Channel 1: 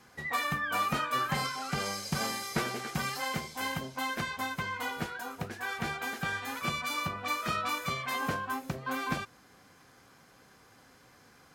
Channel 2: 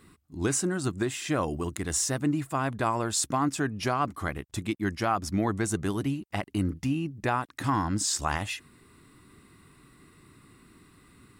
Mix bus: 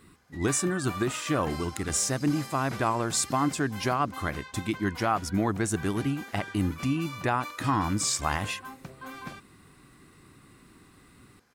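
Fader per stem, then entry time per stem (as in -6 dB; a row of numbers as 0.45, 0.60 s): -8.0, +0.5 dB; 0.15, 0.00 s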